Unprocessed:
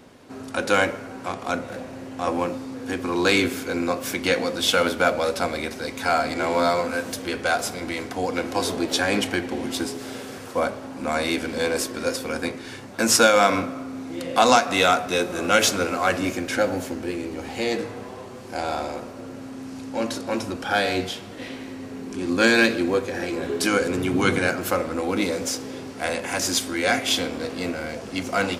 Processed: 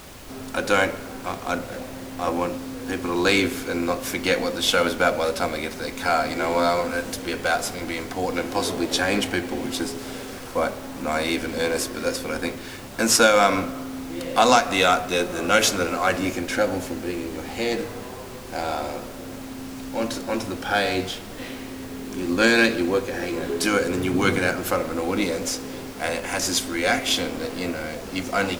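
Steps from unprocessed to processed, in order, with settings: added noise pink -42 dBFS

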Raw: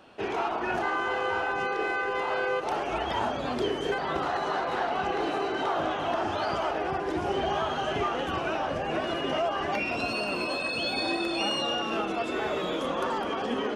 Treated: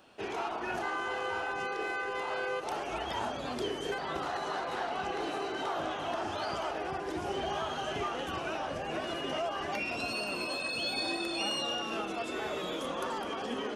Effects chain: treble shelf 5.1 kHz +11 dB; trim -6.5 dB

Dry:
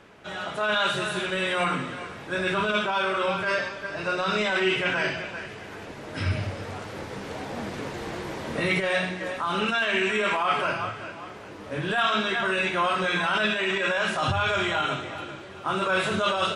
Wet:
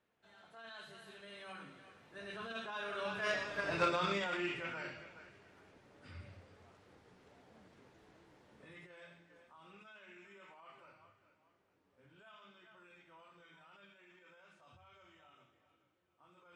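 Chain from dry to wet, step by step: Doppler pass-by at 3.68 s, 24 m/s, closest 5.4 m; Chebyshev shaper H 3 -10 dB, 5 -27 dB, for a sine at -14.5 dBFS; trim +6.5 dB

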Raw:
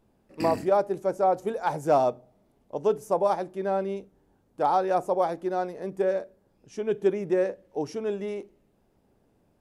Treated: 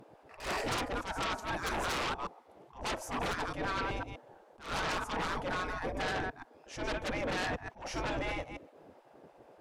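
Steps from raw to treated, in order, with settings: chunks repeated in reverse 126 ms, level -8 dB; RIAA curve playback; spectral gate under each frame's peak -20 dB weak; in parallel at -8.5 dB: sine folder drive 20 dB, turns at -21 dBFS; on the sum: attacks held to a fixed rise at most 150 dB/s; trim -3 dB

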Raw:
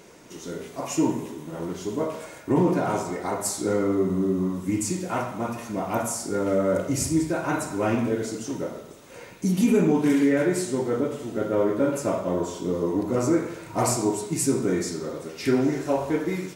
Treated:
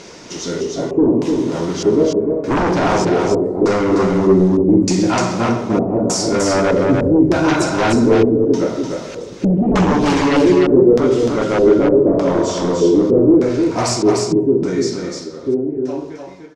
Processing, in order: fade out at the end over 4.56 s; de-hum 138.9 Hz, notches 2; sine folder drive 10 dB, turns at -10 dBFS; LFO low-pass square 0.82 Hz 420–5300 Hz; on a send: delay 300 ms -4 dB; on the sum: trim -2.5 dB

